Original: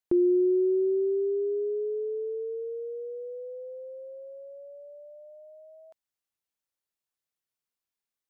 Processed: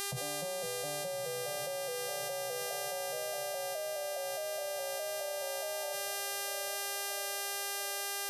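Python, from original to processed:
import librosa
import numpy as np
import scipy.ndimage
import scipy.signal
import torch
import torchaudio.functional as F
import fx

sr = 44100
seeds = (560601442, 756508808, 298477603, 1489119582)

p1 = fx.vocoder_arp(x, sr, chord='minor triad', root=47, every_ms=208)
p2 = fx.dereverb_blind(p1, sr, rt60_s=1.2)
p3 = scipy.signal.sosfilt(scipy.signal.ellip(3, 1.0, 40, [160.0, 630.0], 'bandstop', fs=sr, output='sos'), p2)
p4 = fx.low_shelf(p3, sr, hz=140.0, db=10.0)
p5 = fx.rider(p4, sr, range_db=10, speed_s=0.5)
p6 = p4 + F.gain(torch.from_numpy(p5), -0.5).numpy()
p7 = fx.dmg_crackle(p6, sr, seeds[0], per_s=32.0, level_db=-64.0)
p8 = fx.fixed_phaser(p7, sr, hz=390.0, stages=6)
p9 = fx.dmg_buzz(p8, sr, base_hz=400.0, harmonics=32, level_db=-54.0, tilt_db=-1, odd_only=False)
p10 = fx.echo_diffused(p9, sr, ms=1201, feedback_pct=55, wet_db=-12.0)
p11 = fx.env_flatten(p10, sr, amount_pct=100)
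y = F.gain(torch.from_numpy(p11), 5.0).numpy()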